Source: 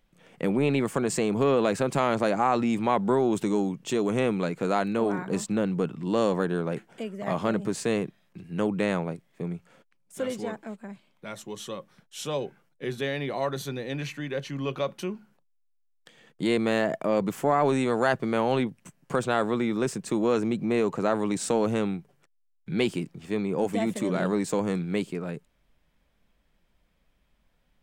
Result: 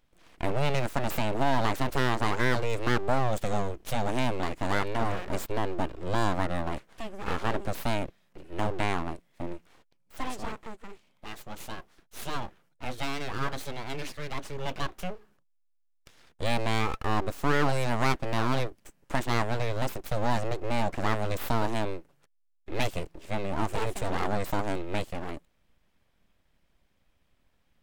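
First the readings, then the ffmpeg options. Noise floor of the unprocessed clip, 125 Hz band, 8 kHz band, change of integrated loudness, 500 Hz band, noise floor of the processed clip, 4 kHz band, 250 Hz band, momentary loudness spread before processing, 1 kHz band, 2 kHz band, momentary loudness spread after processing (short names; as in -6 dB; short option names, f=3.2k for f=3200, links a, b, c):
-68 dBFS, +0.5 dB, -4.5 dB, -4.0 dB, -6.5 dB, -68 dBFS, +1.0 dB, -7.5 dB, 13 LU, -0.5 dB, +1.0 dB, 14 LU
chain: -af "aeval=exprs='abs(val(0))':c=same"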